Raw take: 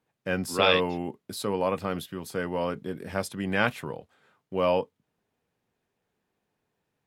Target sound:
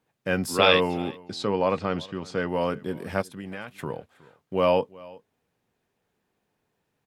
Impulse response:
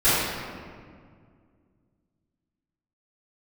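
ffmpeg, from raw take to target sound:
-filter_complex "[0:a]asettb=1/sr,asplit=3[a][b][c];[a]atrim=end=1.204[d];[b]atrim=start=1.2:end=2.49,asetpts=PTS-STARTPTS,afade=t=in:d=0.004:c=qsin,afade=t=out:st=1.286:d=0.004:c=qsin,lowpass=f=6.5k:w=0.5412,lowpass=f=6.5k:w=1.3066[e];[c]atrim=start=2.486[f];[d][e]acrossfade=d=0.004:c1=hsin:c2=qsin[g];[g][f]acrossfade=d=0.004:c1=qsin:c2=hsin,asplit=3[h][i][j];[h]afade=t=out:st=3.21:d=0.02[k];[i]acompressor=threshold=-37dB:ratio=8,afade=t=in:st=3.21:d=0.02,afade=t=out:st=3.78:d=0.02[l];[j]afade=t=in:st=3.78:d=0.02[m];[k][l][m]amix=inputs=3:normalize=0,aecho=1:1:367:0.075,volume=3dB"

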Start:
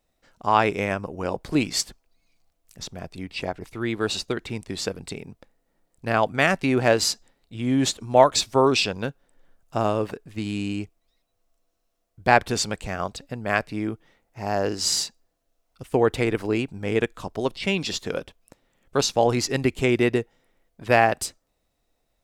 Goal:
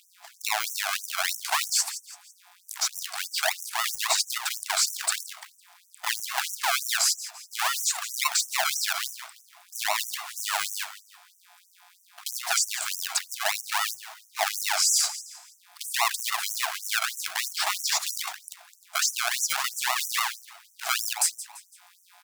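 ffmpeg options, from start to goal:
-filter_complex "[0:a]highpass=f=140:p=1,bandreject=f=60:t=h:w=6,bandreject=f=120:t=h:w=6,bandreject=f=180:t=h:w=6,bandreject=f=240:t=h:w=6,bandreject=f=300:t=h:w=6,bandreject=f=360:t=h:w=6,bandreject=f=420:t=h:w=6,bandreject=f=480:t=h:w=6,bandreject=f=540:t=h:w=6,acompressor=threshold=-25dB:ratio=6,acrossover=split=5000[a][b];[a]acrusher=samples=38:mix=1:aa=0.000001:lfo=1:lforange=22.8:lforate=3.6[c];[c][b]amix=inputs=2:normalize=0,aeval=exprs='val(0)+0.01*(sin(2*PI*60*n/s)+sin(2*PI*2*60*n/s)/2+sin(2*PI*3*60*n/s)/3+sin(2*PI*4*60*n/s)/4+sin(2*PI*5*60*n/s)/5)':c=same,asplit=2[d][e];[e]acrusher=bits=2:mode=log:mix=0:aa=0.000001,volume=-9dB[f];[d][f]amix=inputs=2:normalize=0,asplit=4[g][h][i][j];[h]adelay=168,afreqshift=52,volume=-21.5dB[k];[i]adelay=336,afreqshift=104,volume=-29.5dB[l];[j]adelay=504,afreqshift=156,volume=-37.4dB[m];[g][k][l][m]amix=inputs=4:normalize=0,alimiter=level_in=24dB:limit=-1dB:release=50:level=0:latency=1,afftfilt=real='re*gte(b*sr/1024,610*pow(5700/610,0.5+0.5*sin(2*PI*3.1*pts/sr)))':imag='im*gte(b*sr/1024,610*pow(5700/610,0.5+0.5*sin(2*PI*3.1*pts/sr)))':win_size=1024:overlap=0.75,volume=-9dB"

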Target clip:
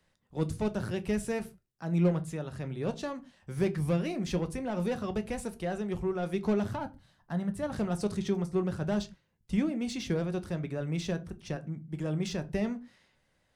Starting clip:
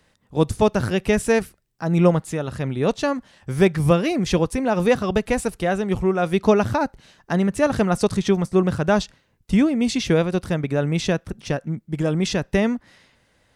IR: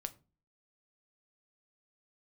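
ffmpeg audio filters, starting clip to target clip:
-filter_complex "[0:a]asettb=1/sr,asplit=3[a][b][c];[a]atrim=end=6.754[d];[b]atrim=start=6.75:end=7.72,asetpts=PTS-STARTPTS,afade=t=in:d=0.004:c=qsin,afade=t=out:st=0.966:d=0.004:c=qsin,equalizer=f=100:t=o:w=0.67:g=8,equalizer=f=400:t=o:w=0.67:g=-9,equalizer=f=2.5k:t=o:w=0.67:g=-9,equalizer=f=6.3k:t=o:w=0.67:g=-8[e];[c]atrim=start=7.716[f];[d][e]acrossfade=d=0.004:c1=hsin:c2=qsin[g];[g][f]acrossfade=d=0.004:c1=qsin:c2=hsin,acrossover=split=410[h][i];[i]asoftclip=type=tanh:threshold=-19.5dB[j];[h][j]amix=inputs=2:normalize=0[k];[1:a]atrim=start_sample=2205,afade=t=out:st=0.24:d=0.01,atrim=end_sample=11025,asetrate=52920,aresample=44100[l];[k][l]afir=irnorm=-1:irlink=0,volume=-7.5dB"

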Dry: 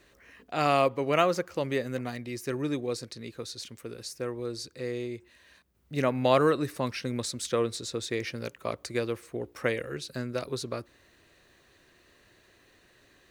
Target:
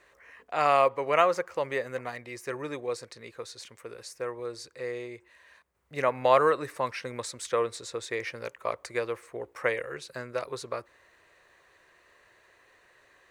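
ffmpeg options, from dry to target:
-af "equalizer=f=250:t=o:w=1:g=-5,equalizer=f=500:t=o:w=1:g=8,equalizer=f=1k:t=o:w=1:g=11,equalizer=f=2k:t=o:w=1:g=9,equalizer=f=8k:t=o:w=1:g=6,volume=-8.5dB"

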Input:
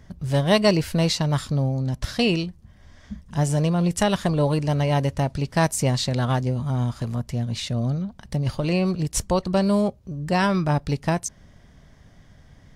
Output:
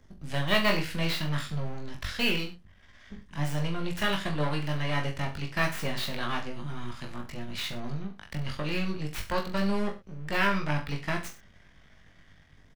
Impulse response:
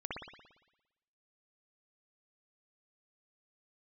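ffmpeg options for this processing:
-filter_complex "[0:a]aeval=exprs='if(lt(val(0),0),0.251*val(0),val(0))':c=same,equalizer=f=120:t=o:w=0.27:g=-7.5,acrossover=split=220|1500|3200[a][b][c][d];[c]dynaudnorm=f=110:g=5:m=13dB[e];[d]aeval=exprs='(mod(33.5*val(0)+1,2)-1)/33.5':c=same[f];[a][b][e][f]amix=inputs=4:normalize=0,aecho=1:1:20|42|66.2|92.82|122.1:0.631|0.398|0.251|0.158|0.1,volume=-7.5dB"

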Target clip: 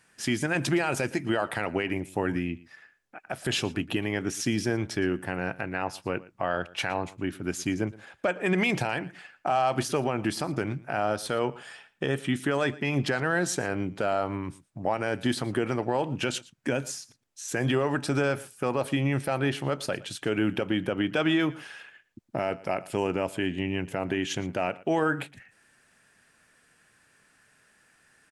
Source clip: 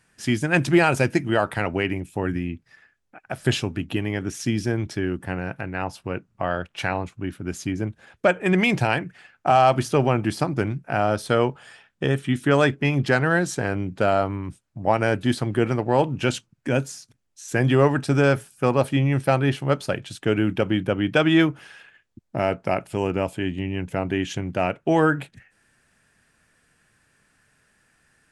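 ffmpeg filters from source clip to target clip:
-filter_complex "[0:a]lowshelf=f=150:g=-11,alimiter=limit=-17dB:level=0:latency=1:release=112,asplit=2[a][b];[b]aecho=0:1:115:0.0944[c];[a][c]amix=inputs=2:normalize=0,volume=1.5dB"

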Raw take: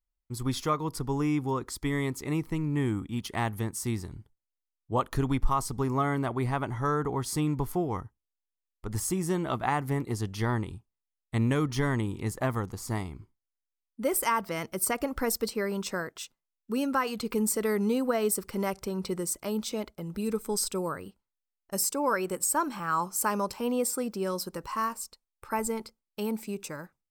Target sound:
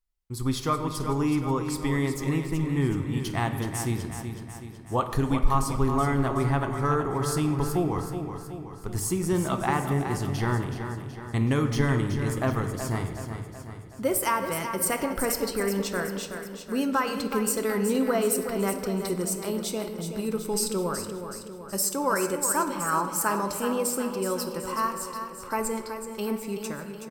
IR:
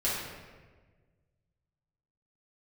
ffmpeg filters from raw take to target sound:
-filter_complex "[0:a]aecho=1:1:374|748|1122|1496|1870|2244:0.376|0.203|0.11|0.0592|0.032|0.0173,asplit=2[a][b];[1:a]atrim=start_sample=2205[c];[b][c]afir=irnorm=-1:irlink=0,volume=-14dB[d];[a][d]amix=inputs=2:normalize=0"

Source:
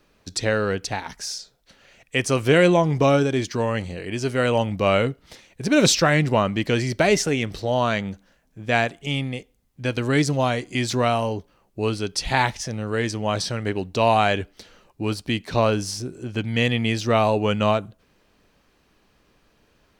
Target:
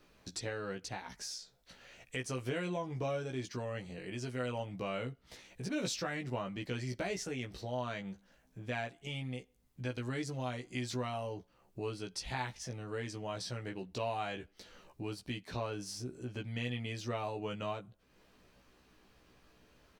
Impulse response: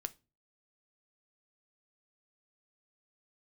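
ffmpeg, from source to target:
-filter_complex "[0:a]acompressor=threshold=-44dB:ratio=2,asplit=2[a][b];[b]adelay=16,volume=-3.5dB[c];[a][c]amix=inputs=2:normalize=0,volume=-5dB"

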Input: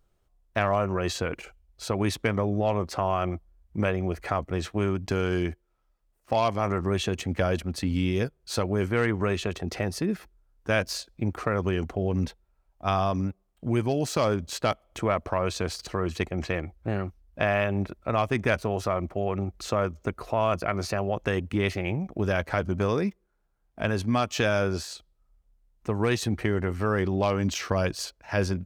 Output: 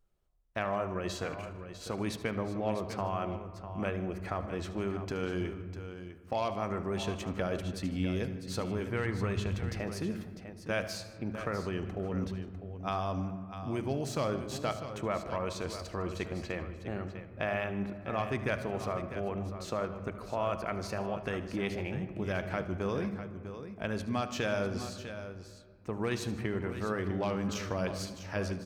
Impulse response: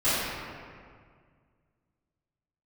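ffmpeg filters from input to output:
-filter_complex "[0:a]aecho=1:1:75|153|650:0.168|0.106|0.282,asplit=2[a][b];[1:a]atrim=start_sample=2205,lowpass=4.3k,lowshelf=f=230:g=8[c];[b][c]afir=irnorm=-1:irlink=0,volume=-26.5dB[d];[a][d]amix=inputs=2:normalize=0,asettb=1/sr,asplit=3[e][f][g];[e]atrim=end=8.554[h];[f]atrim=start=8.55:end=9.8,asetpts=PTS-STARTPTS,afade=t=in:d=0.004:c=qsin,afade=t=out:st=1.246:d=0.004:c=qsin,asubboost=boost=10:cutoff=150[i];[g]atrim=start=9.796[j];[h][i]acrossfade=d=0.004:c1=hsin:c2=qsin[k];[k][j]acrossfade=d=0.004:c1=qsin:c2=hsin,volume=-8.5dB"

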